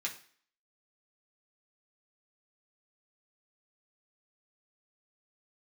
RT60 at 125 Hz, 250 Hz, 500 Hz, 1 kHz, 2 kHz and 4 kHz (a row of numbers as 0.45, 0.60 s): 0.40, 0.50, 0.45, 0.50, 0.50, 0.50 s